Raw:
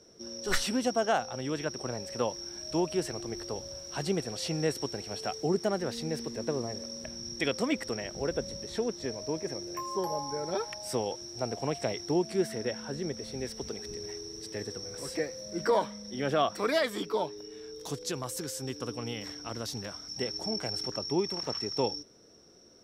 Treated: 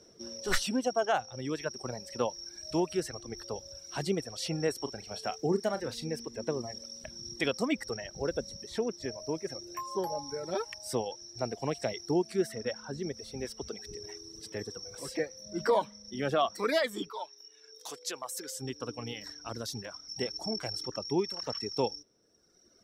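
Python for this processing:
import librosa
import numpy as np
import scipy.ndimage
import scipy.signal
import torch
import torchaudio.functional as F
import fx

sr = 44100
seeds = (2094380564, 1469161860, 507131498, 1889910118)

y = fx.dereverb_blind(x, sr, rt60_s=1.6)
y = fx.doubler(y, sr, ms=36.0, db=-12.5, at=(4.78, 6.09))
y = fx.highpass(y, sr, hz=fx.line((17.09, 1100.0), (18.56, 380.0)), slope=12, at=(17.09, 18.56), fade=0.02)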